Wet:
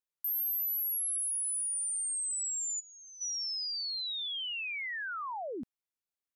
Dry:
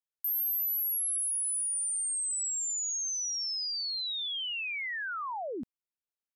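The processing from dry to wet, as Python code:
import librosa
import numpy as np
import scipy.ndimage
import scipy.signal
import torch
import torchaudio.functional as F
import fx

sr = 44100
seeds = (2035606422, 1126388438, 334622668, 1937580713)

y = fx.lowpass(x, sr, hz=4100.0, slope=24, at=(2.79, 3.2), fade=0.02)
y = y * 10.0 ** (-2.0 / 20.0)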